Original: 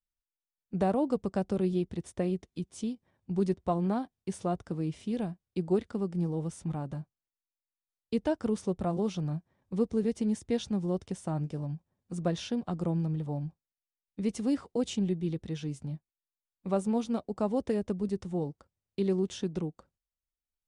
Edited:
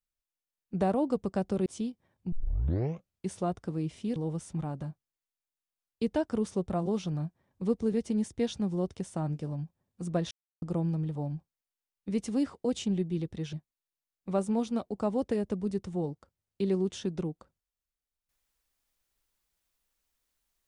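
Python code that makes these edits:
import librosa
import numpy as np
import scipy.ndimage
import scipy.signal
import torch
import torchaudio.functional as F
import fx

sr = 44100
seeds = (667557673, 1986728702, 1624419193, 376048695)

y = fx.edit(x, sr, fx.cut(start_s=1.66, length_s=1.03),
    fx.tape_start(start_s=3.35, length_s=0.96),
    fx.cut(start_s=5.19, length_s=1.08),
    fx.silence(start_s=12.42, length_s=0.31),
    fx.cut(start_s=15.64, length_s=0.27), tone=tone)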